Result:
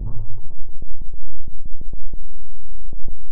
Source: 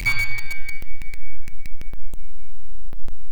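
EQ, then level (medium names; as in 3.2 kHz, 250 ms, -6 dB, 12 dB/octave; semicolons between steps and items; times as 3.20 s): Gaussian low-pass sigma 14 samples; +3.5 dB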